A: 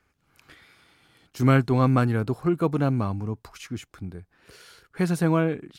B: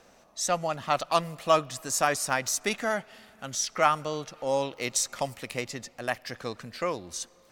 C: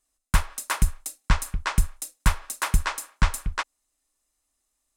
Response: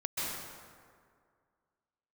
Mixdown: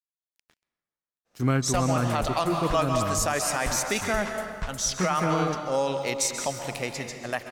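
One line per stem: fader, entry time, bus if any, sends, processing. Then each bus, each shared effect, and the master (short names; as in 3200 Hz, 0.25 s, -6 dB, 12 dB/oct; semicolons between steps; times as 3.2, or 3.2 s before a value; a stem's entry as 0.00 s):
-4.0 dB, 0.00 s, send -23.5 dB, crossover distortion -44 dBFS
0.0 dB, 1.25 s, send -8.5 dB, expander -46 dBFS
-14.0 dB, 1.40 s, send -17 dB, dry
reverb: on, RT60 2.1 s, pre-delay 0.123 s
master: limiter -14.5 dBFS, peak gain reduction 8.5 dB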